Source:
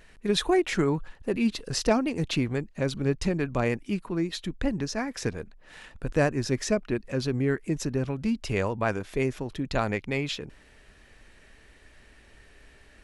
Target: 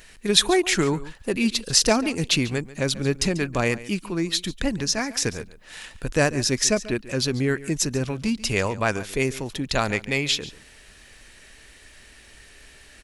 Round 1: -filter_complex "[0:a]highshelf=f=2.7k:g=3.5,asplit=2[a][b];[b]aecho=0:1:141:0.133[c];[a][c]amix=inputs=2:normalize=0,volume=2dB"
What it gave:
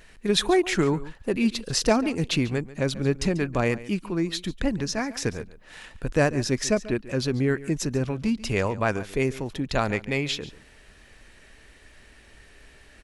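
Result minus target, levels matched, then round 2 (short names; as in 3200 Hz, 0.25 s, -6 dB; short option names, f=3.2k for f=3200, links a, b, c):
4000 Hz band -4.5 dB
-filter_complex "[0:a]highshelf=f=2.7k:g=13.5,asplit=2[a][b];[b]aecho=0:1:141:0.133[c];[a][c]amix=inputs=2:normalize=0,volume=2dB"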